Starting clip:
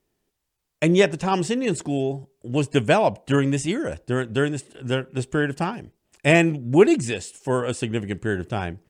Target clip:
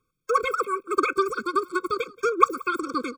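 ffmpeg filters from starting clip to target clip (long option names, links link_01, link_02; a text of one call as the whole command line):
ffmpeg -i in.wav -filter_complex "[0:a]lowpass=8100,acrossover=split=680|810[link_01][link_02][link_03];[link_03]acompressor=threshold=-40dB:ratio=6[link_04];[link_01][link_02][link_04]amix=inputs=3:normalize=0,aphaser=in_gain=1:out_gain=1:delay=4.3:decay=0.23:speed=1.8:type=sinusoidal,asplit=2[link_05][link_06];[link_06]aecho=0:1:496:0.0708[link_07];[link_05][link_07]amix=inputs=2:normalize=0,asetrate=123480,aresample=44100,afftfilt=real='re*eq(mod(floor(b*sr/1024/530),2),0)':imag='im*eq(mod(floor(b*sr/1024/530),2),0)':win_size=1024:overlap=0.75" out.wav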